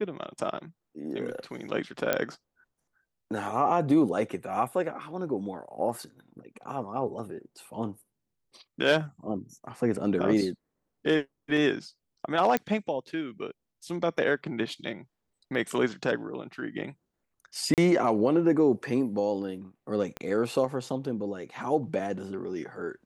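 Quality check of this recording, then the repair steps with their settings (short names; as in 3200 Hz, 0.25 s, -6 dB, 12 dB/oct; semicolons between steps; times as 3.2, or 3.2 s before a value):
2.13 pop -10 dBFS
12.57 pop -12 dBFS
17.74–17.78 gap 38 ms
20.17 pop -20 dBFS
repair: de-click; interpolate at 17.74, 38 ms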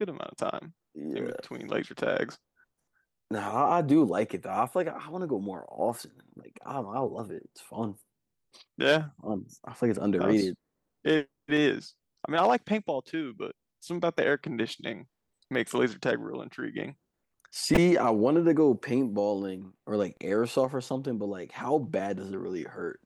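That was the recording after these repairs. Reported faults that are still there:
12.57 pop
20.17 pop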